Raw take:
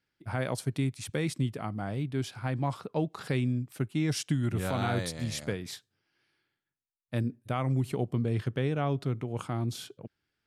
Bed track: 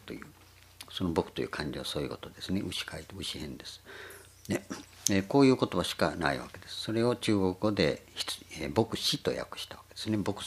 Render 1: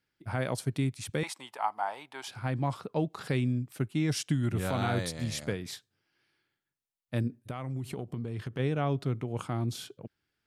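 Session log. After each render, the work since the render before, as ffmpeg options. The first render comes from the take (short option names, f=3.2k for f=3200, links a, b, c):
-filter_complex "[0:a]asettb=1/sr,asplit=3[a][b][c];[a]atrim=end=1.234[d];[b]atrim=start=1.23:end=2.28,asetpts=PTS-STARTPTS,afade=t=in:d=0.004:c=qsin,afade=t=out:st=1.046:d=0.004:c=qsin,highpass=f=880:t=q:w=7.2[e];[c]atrim=start=2.276[f];[d][e]acrossfade=d=0.004:c1=hsin:c2=qsin[g];[g][f]acrossfade=d=0.004:c1=qsin:c2=hsin,asplit=3[h][i][j];[h]afade=t=out:st=7.27:d=0.02[k];[i]acompressor=threshold=-31dB:ratio=10:attack=3.2:release=140:knee=1:detection=peak,afade=t=in:st=7.27:d=0.02,afade=t=out:st=8.58:d=0.02[l];[j]afade=t=in:st=8.58:d=0.02[m];[k][l][m]amix=inputs=3:normalize=0"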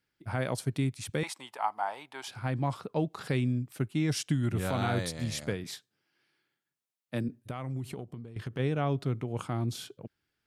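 -filter_complex "[0:a]asettb=1/sr,asplit=3[a][b][c];[a]atrim=end=5.644[d];[b]atrim=start=5.64:end=7.29,asetpts=PTS-STARTPTS,afade=t=in:d=0.004:c=qsin,afade=t=out:st=1.646:d=0.004:c=qsin,highpass=f=130:w=0.5412,highpass=f=130:w=1.3066[e];[c]atrim=start=7.286[f];[d][e]acrossfade=d=0.004:c1=hsin:c2=qsin[g];[g][f]acrossfade=d=0.004:c1=qsin:c2=hsin,asplit=2[h][i];[h]atrim=end=8.36,asetpts=PTS-STARTPTS,afade=t=out:st=7.79:d=0.57:silence=0.237137[j];[i]atrim=start=8.36,asetpts=PTS-STARTPTS,afade=t=in:d=0.004:c=hsin:silence=0.237137[k];[j][k]concat=n=2:v=0:a=1"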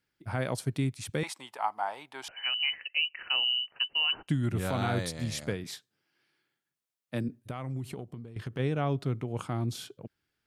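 -filter_complex "[0:a]asettb=1/sr,asplit=3[a][b][c];[a]atrim=end=2.284[d];[b]atrim=start=2.28:end=4.28,asetpts=PTS-STARTPTS,afade=t=in:d=0.004:c=qsin,afade=t=out:st=1.996:d=0.004:c=qsin,lowpass=f=2.6k:t=q:w=0.5098,lowpass=f=2.6k:t=q:w=0.6013,lowpass=f=2.6k:t=q:w=0.9,lowpass=f=2.6k:t=q:w=2.563,afreqshift=-3100[e];[c]atrim=start=4.276[f];[d][e]acrossfade=d=0.004:c1=hsin:c2=qsin[g];[g][f]acrossfade=d=0.004:c1=qsin:c2=hsin"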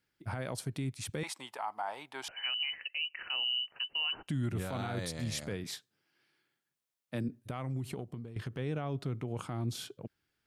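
-af "acompressor=threshold=-33dB:ratio=1.5,alimiter=level_in=2dB:limit=-24dB:level=0:latency=1:release=31,volume=-2dB"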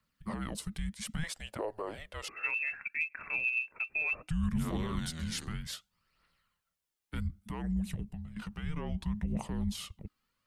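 -af "afreqshift=-320,aphaser=in_gain=1:out_gain=1:delay=2.6:decay=0.4:speed=0.64:type=triangular"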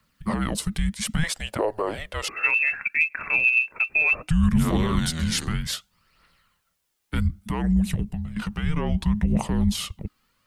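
-af "volume=12dB"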